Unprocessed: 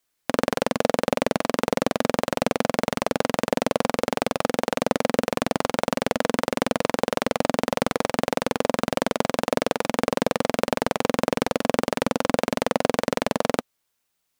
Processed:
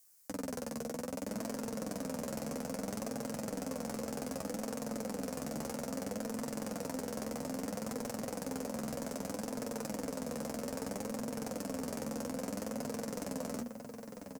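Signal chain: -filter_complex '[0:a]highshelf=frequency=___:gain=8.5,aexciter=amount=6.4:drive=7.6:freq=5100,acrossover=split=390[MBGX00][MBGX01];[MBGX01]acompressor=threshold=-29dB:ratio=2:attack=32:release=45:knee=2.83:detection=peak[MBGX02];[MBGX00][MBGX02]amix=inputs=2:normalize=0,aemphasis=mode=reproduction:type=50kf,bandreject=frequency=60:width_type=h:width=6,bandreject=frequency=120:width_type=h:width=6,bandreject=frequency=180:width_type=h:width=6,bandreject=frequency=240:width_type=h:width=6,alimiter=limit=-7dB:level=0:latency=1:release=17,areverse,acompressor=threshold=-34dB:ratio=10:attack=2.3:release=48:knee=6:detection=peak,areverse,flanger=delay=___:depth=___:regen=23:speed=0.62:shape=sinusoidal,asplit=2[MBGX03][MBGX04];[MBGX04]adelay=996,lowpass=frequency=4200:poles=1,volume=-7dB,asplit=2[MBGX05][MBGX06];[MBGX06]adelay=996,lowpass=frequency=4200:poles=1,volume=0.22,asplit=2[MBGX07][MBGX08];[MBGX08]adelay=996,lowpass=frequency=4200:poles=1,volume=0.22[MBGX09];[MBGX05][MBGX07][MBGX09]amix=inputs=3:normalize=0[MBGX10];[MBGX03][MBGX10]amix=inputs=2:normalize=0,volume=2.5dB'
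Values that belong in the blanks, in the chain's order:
11000, 8.6, 4.3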